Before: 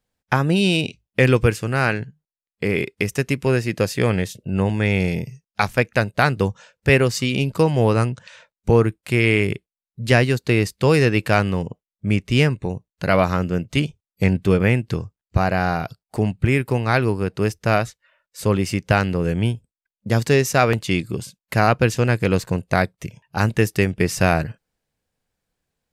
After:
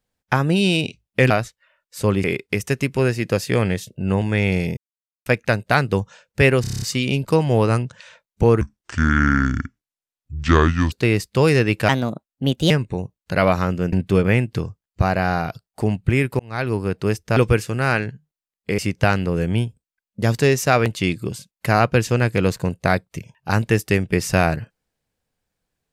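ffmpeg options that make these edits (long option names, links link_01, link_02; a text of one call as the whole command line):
ffmpeg -i in.wav -filter_complex "[0:a]asplit=20[link_01][link_02][link_03][link_04][link_05][link_06][link_07][link_08][link_09][link_10][link_11][link_12][link_13][link_14][link_15][link_16][link_17][link_18][link_19][link_20];[link_01]atrim=end=1.302[link_21];[link_02]atrim=start=17.718:end=18.662[link_22];[link_03]atrim=start=2.718:end=5.25,asetpts=PTS-STARTPTS,afade=type=out:start_time=2.528:duration=0.004:curve=hsin[link_23];[link_04]atrim=start=5.25:end=5.74,asetpts=PTS-STARTPTS,volume=0[link_24];[link_05]atrim=start=5.74:end=7.122,asetpts=PTS-STARTPTS,afade=type=in:duration=0.004:curve=hsin[link_25];[link_06]atrim=start=7.088:end=7.122[link_26];[link_07]atrim=start=7.088:end=7.122[link_27];[link_08]atrim=start=7.088:end=7.122[link_28];[link_09]atrim=start=7.088:end=7.122[link_29];[link_10]atrim=start=7.088:end=7.122[link_30];[link_11]atrim=start=7.088:end=7.122[link_31];[link_12]atrim=start=7.088:end=8.884[link_32];[link_13]atrim=start=8.88:end=10.38,asetpts=PTS-STARTPTS,asetrate=28665,aresample=44100,atrim=end_sample=101769,asetpts=PTS-STARTPTS[link_33];[link_14]atrim=start=10.376:end=11.354[link_34];[link_15]atrim=start=11.35:end=12.42,asetpts=PTS-STARTPTS,asetrate=57771,aresample=44100[link_35];[link_16]atrim=start=12.416:end=13.642[link_36];[link_17]atrim=start=14.278:end=16.75,asetpts=PTS-STARTPTS,afade=type=out:start_time=2.468:duration=0.004:curve=hsin[link_37];[link_18]atrim=start=16.75:end=17.722,asetpts=PTS-STARTPTS,afade=type=in:duration=0.42[link_38];[link_19]atrim=start=1.298:end=2.722[link_39];[link_20]atrim=start=18.658[link_40];[link_21][link_22]acrossfade=duration=0.004:curve1=hsin:curve2=hsin[link_41];[link_23][link_24][link_25]concat=n=3:v=0:a=1[link_42];[link_41][link_42]acrossfade=duration=0.004:curve1=hsin:curve2=hsin[link_43];[link_43][link_26]acrossfade=duration=0.004:curve1=hsin:curve2=hsin[link_44];[link_44][link_27]acrossfade=duration=0.004:curve1=hsin:curve2=hsin[link_45];[link_45][link_28]acrossfade=duration=0.004:curve1=hsin:curve2=hsin[link_46];[link_46][link_29]acrossfade=duration=0.004:curve1=hsin:curve2=hsin[link_47];[link_47][link_30]acrossfade=duration=0.004:curve1=hsin:curve2=hsin[link_48];[link_48][link_31]acrossfade=duration=0.004:curve1=hsin:curve2=hsin[link_49];[link_49][link_32]acrossfade=duration=0.004:curve1=hsin:curve2=hsin[link_50];[link_50][link_33]acrossfade=duration=0.004:curve1=hsin:curve2=hsin[link_51];[link_51][link_34]acrossfade=duration=0.004:curve1=hsin:curve2=hsin[link_52];[link_52][link_35]acrossfade=duration=0.004:curve1=hsin:curve2=hsin[link_53];[link_53][link_36]acrossfade=duration=0.004:curve1=hsin:curve2=hsin[link_54];[link_37][link_38]concat=n=2:v=0:a=1[link_55];[link_54][link_55]acrossfade=duration=0.004:curve1=hsin:curve2=hsin[link_56];[link_56][link_39]acrossfade=duration=0.004:curve1=hsin:curve2=hsin[link_57];[link_57][link_40]acrossfade=duration=0.004:curve1=hsin:curve2=hsin" out.wav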